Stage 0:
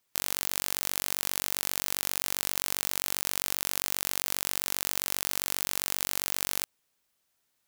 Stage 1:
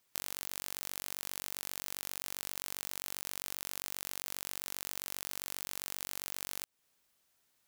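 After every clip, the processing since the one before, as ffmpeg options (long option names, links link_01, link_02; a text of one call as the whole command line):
ffmpeg -i in.wav -af "acompressor=threshold=-35dB:ratio=4,volume=1dB" out.wav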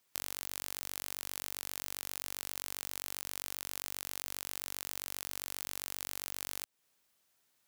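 ffmpeg -i in.wav -af "lowshelf=frequency=79:gain=-5" out.wav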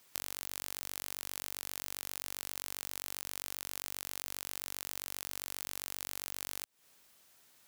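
ffmpeg -i in.wav -af "acompressor=threshold=-45dB:ratio=4,volume=10.5dB" out.wav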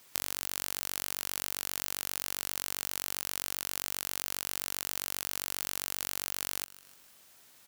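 ffmpeg -i in.wav -af "aecho=1:1:148|296|444|592:0.126|0.0604|0.029|0.0139,volume=5.5dB" out.wav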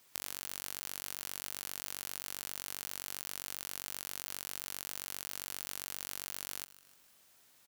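ffmpeg -i in.wav -af "aecho=1:1:71:0.106,volume=-6dB" out.wav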